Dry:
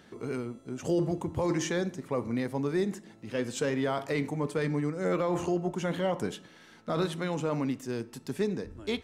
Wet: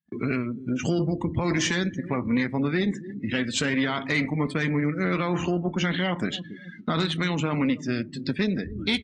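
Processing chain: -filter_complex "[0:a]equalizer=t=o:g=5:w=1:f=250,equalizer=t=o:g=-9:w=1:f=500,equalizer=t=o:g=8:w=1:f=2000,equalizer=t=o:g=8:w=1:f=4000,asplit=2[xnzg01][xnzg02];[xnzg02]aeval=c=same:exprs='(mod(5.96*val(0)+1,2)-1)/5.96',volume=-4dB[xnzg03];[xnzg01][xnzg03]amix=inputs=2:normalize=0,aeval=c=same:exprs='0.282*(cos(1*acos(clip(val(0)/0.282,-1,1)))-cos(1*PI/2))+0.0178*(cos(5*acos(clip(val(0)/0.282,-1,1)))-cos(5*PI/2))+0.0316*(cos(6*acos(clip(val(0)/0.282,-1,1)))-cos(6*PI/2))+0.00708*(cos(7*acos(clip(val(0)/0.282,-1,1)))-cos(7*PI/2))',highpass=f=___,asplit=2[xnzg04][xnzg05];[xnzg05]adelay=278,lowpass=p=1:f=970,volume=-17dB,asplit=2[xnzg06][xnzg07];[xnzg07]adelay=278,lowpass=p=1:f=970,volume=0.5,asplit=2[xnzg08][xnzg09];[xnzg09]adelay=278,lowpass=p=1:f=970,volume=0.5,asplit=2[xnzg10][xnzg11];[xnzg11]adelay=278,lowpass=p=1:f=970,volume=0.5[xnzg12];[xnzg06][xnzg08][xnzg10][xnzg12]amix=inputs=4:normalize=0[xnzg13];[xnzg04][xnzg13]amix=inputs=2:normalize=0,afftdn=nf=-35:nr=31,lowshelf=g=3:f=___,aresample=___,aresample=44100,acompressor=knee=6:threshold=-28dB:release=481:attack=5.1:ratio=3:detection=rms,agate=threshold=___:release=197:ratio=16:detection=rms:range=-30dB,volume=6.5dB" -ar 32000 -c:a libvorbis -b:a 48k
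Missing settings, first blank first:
40, 170, 22050, -49dB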